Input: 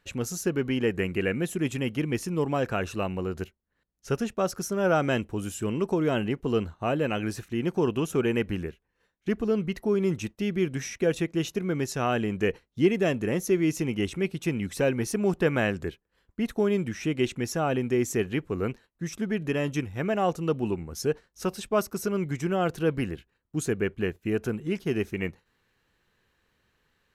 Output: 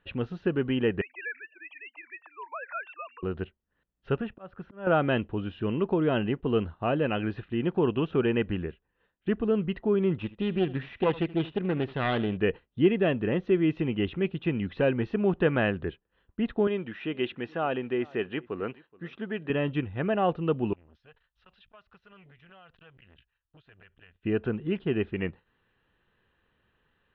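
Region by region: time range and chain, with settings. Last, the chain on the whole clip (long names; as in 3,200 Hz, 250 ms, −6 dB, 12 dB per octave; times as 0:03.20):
0:01.01–0:03.23: three sine waves on the formant tracks + high-pass filter 900 Hz 24 dB per octave + high-frequency loss of the air 190 metres
0:04.18–0:04.87: low-pass filter 2,500 Hz + dynamic equaliser 330 Hz, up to −6 dB, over −37 dBFS, Q 0.8 + volume swells 330 ms
0:10.18–0:12.37: phase distortion by the signal itself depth 0.31 ms + single-tap delay 76 ms −18.5 dB
0:16.67–0:19.50: high-pass filter 420 Hz 6 dB per octave + single-tap delay 425 ms −23.5 dB
0:20.73–0:24.23: guitar amp tone stack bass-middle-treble 10-0-10 + downward compressor 12 to 1, threshold −47 dBFS + saturating transformer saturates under 890 Hz
whole clip: Butterworth low-pass 3,500 Hz 48 dB per octave; notch filter 2,200 Hz, Q 7.5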